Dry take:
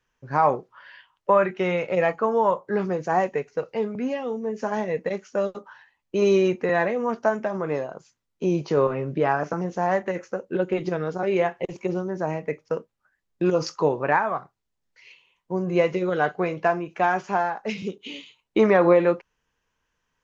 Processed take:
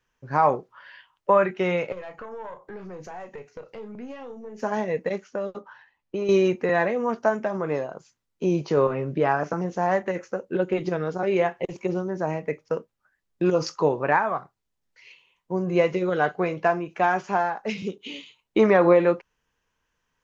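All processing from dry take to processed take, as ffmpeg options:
ffmpeg -i in.wav -filter_complex "[0:a]asettb=1/sr,asplit=3[link_01][link_02][link_03];[link_01]atrim=end=1.924[link_04];[link_02]atrim=start=1.92:end=4.63,asetpts=PTS-STARTPTS,afade=type=in:duration=0.004:curve=qsin,afade=type=out:start_time=2.706:duration=0.004:curve=qsin,acompressor=threshold=-34dB:ratio=4:attack=3.2:release=140:knee=1:detection=peak,aeval=exprs='(tanh(28.2*val(0)+0.45)-tanh(0.45))/28.2':channel_layout=same,asplit=2[link_05][link_06];[link_06]adelay=33,volume=-11dB[link_07];[link_05][link_07]amix=inputs=2:normalize=0,atrim=end_sample=119511[link_08];[link_03]atrim=start=4.626[link_09];[link_04][link_08]acrossfade=duration=0.004:curve1=hsin:curve2=qsin[link_10];[link_10][link_09]acrossfade=duration=0.004:curve1=qsin:curve2=hsin,asettb=1/sr,asplit=3[link_11][link_12][link_13];[link_11]atrim=end=5.244[link_14];[link_12]atrim=start=5.24:end=6.29,asetpts=PTS-STARTPTS,afade=type=in:duration=0.004:curve=qsin,afade=type=out:start_time=1.046:duration=0.004:curve=qsin,lowpass=frequency=3500:poles=1,acompressor=threshold=-24dB:ratio=6:attack=3.2:release=140:knee=1:detection=peak[link_15];[link_13]atrim=start=6.286[link_16];[link_14][link_15]acrossfade=duration=0.004:curve1=hsin:curve2=qsin[link_17];[link_17][link_16]acrossfade=duration=0.004:curve1=qsin:curve2=hsin" out.wav

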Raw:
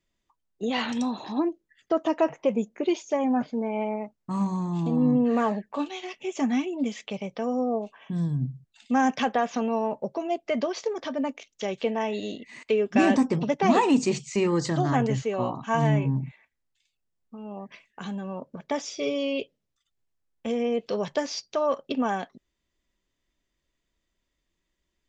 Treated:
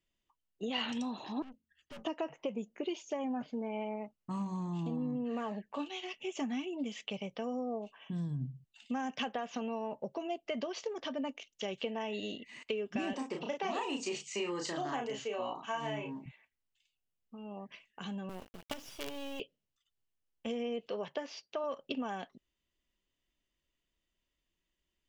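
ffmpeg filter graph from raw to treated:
ffmpeg -i in.wav -filter_complex "[0:a]asettb=1/sr,asplit=3[link_01][link_02][link_03];[link_01]atrim=end=1.424[link_04];[link_02]atrim=start=1.42:end=2.05,asetpts=PTS-STARTPTS,afade=type=in:duration=0.004:curve=qsin,afade=type=out:start_time=0.626:duration=0.004:curve=qsin,bandreject=frequency=50:width_type=h:width=6,bandreject=frequency=100:width_type=h:width=6,bandreject=frequency=150:width_type=h:width=6,bandreject=frequency=200:width_type=h:width=6,bandreject=frequency=250:width_type=h:width=6,bandreject=frequency=300:width_type=h:width=6,afreqshift=-80,aeval=exprs='(tanh(100*val(0)+0.75)-tanh(0.75))/100':channel_layout=same[link_05];[link_03]atrim=start=2.046[link_06];[link_04][link_05]acrossfade=duration=0.004:curve1=hsin:curve2=qsin[link_07];[link_07][link_06]acrossfade=duration=0.004:curve1=qsin:curve2=hsin,asettb=1/sr,asplit=3[link_08][link_09][link_10];[link_08]atrim=end=13.134[link_11];[link_09]atrim=start=13.13:end=16.26,asetpts=PTS-STARTPTS,afade=type=in:duration=0.004:curve=qsin,afade=type=out:start_time=3.126:duration=0.004:curve=qsin,highpass=380,asplit=2[link_12][link_13];[link_13]adelay=34,volume=-4dB[link_14];[link_12][link_14]amix=inputs=2:normalize=0,atrim=end_sample=138033[link_15];[link_10]atrim=start=16.256[link_16];[link_11][link_15]acrossfade=duration=0.004:curve1=hsin:curve2=qsin[link_17];[link_17][link_16]acrossfade=duration=0.004:curve1=qsin:curve2=hsin,asettb=1/sr,asplit=3[link_18][link_19][link_20];[link_18]atrim=end=18.294[link_21];[link_19]atrim=start=18.29:end=19.4,asetpts=PTS-STARTPTS,afade=type=in:duration=0.004:curve=qsin,afade=type=out:start_time=1.106:duration=0.004:curve=qsin,bandreject=frequency=50:width_type=h:width=6,bandreject=frequency=100:width_type=h:width=6,bandreject=frequency=150:width_type=h:width=6,bandreject=frequency=200:width_type=h:width=6,bandreject=frequency=250:width_type=h:width=6,bandreject=frequency=300:width_type=h:width=6,bandreject=frequency=350:width_type=h:width=6,acrossover=split=300|6100[link_22][link_23][link_24];[link_22]acompressor=threshold=-36dB:ratio=4[link_25];[link_23]acompressor=threshold=-33dB:ratio=4[link_26];[link_24]acompressor=threshold=-54dB:ratio=4[link_27];[link_25][link_26][link_27]amix=inputs=3:normalize=0,acrusher=bits=5:dc=4:mix=0:aa=0.000001[link_28];[link_20]atrim=start=19.396[link_29];[link_21][link_28]acrossfade=duration=0.004:curve1=hsin:curve2=qsin[link_30];[link_30][link_29]acrossfade=duration=0.004:curve1=qsin:curve2=hsin,asettb=1/sr,asplit=3[link_31][link_32][link_33];[link_31]atrim=end=20.884[link_34];[link_32]atrim=start=20.88:end=21.64,asetpts=PTS-STARTPTS,afade=type=in:duration=0.004:curve=qsin,afade=type=out:start_time=0.756:duration=0.004:curve=qsin,highpass=59,bass=frequency=250:gain=-8,treble=frequency=4000:gain=-12[link_35];[link_33]atrim=start=21.636[link_36];[link_34][link_35]acrossfade=duration=0.004:curve1=hsin:curve2=qsin[link_37];[link_37][link_36]acrossfade=duration=0.004:curve1=qsin:curve2=hsin,acompressor=threshold=-26dB:ratio=6,equalizer=frequency=2900:width_type=o:width=0.25:gain=9.5,volume=-7dB" out.wav

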